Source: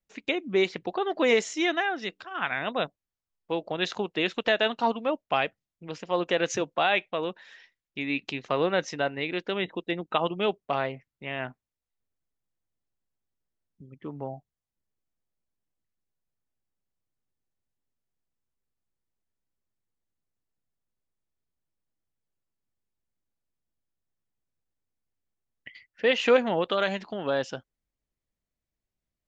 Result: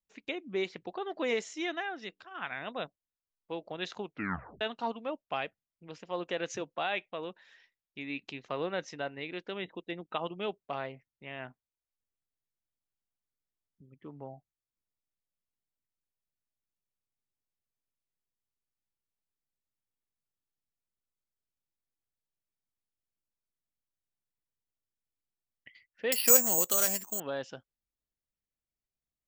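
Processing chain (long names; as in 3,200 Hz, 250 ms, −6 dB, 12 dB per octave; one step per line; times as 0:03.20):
0:04.04: tape stop 0.57 s
0:26.12–0:27.20: bad sample-rate conversion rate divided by 6×, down filtered, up zero stuff
level −9 dB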